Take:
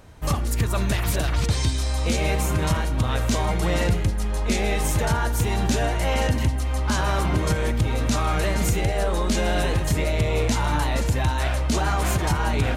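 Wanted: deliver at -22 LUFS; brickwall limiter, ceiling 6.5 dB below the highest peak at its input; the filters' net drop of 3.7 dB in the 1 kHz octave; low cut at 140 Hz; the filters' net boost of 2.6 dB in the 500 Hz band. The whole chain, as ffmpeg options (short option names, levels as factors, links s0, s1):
-af "highpass=140,equalizer=f=500:t=o:g=5,equalizer=f=1000:t=o:g=-7,volume=2,alimiter=limit=0.251:level=0:latency=1"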